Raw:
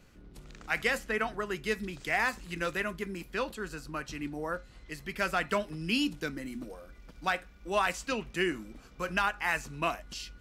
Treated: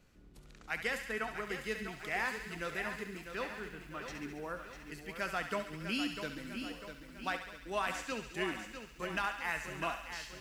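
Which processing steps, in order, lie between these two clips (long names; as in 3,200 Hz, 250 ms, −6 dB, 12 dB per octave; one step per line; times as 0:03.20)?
0:03.50–0:04.05: variable-slope delta modulation 16 kbit/s
on a send: feedback echo with a high-pass in the loop 69 ms, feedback 76%, high-pass 950 Hz, level −8 dB
on the sum: feedback echo at a low word length 649 ms, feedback 55%, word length 9 bits, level −8.5 dB
level −7 dB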